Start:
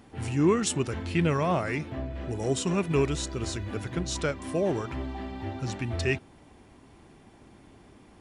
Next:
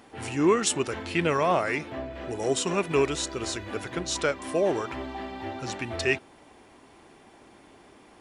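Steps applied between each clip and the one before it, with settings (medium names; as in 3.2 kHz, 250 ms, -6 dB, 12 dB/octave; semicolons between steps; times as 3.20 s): tone controls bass -13 dB, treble -1 dB; trim +4.5 dB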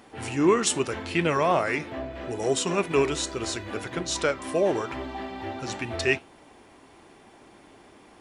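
flange 0.79 Hz, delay 5.2 ms, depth 7.1 ms, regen -82%; trim +5.5 dB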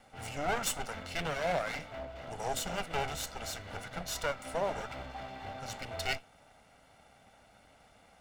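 comb filter that takes the minimum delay 1.4 ms; trim -6.5 dB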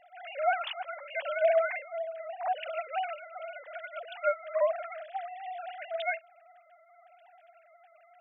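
formants replaced by sine waves; trim +4 dB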